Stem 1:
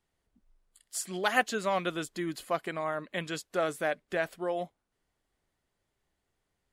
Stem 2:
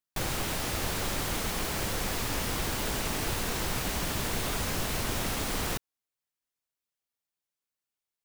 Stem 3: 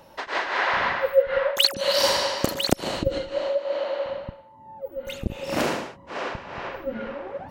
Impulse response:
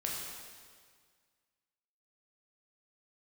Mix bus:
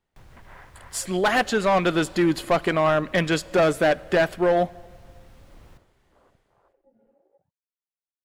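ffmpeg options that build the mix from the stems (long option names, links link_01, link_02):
-filter_complex "[0:a]dynaudnorm=framelen=100:gausssize=9:maxgain=13.5dB,asoftclip=type=hard:threshold=-16.5dB,volume=1.5dB,asplit=3[link_01][link_02][link_03];[link_02]volume=-22.5dB[link_04];[1:a]acrossover=split=140[link_05][link_06];[link_06]acompressor=threshold=-45dB:ratio=3[link_07];[link_05][link_07]amix=inputs=2:normalize=0,volume=-14.5dB,asplit=2[link_08][link_09];[link_09]volume=-14dB[link_10];[2:a]afwtdn=0.0355,acompressor=threshold=-28dB:ratio=6,volume=-16.5dB[link_11];[link_03]apad=whole_len=331139[link_12];[link_11][link_12]sidechaingate=range=-12dB:threshold=-57dB:ratio=16:detection=peak[link_13];[3:a]atrim=start_sample=2205[link_14];[link_04][link_10]amix=inputs=2:normalize=0[link_15];[link_15][link_14]afir=irnorm=-1:irlink=0[link_16];[link_01][link_08][link_13][link_16]amix=inputs=4:normalize=0,highshelf=frequency=4500:gain=-9.5"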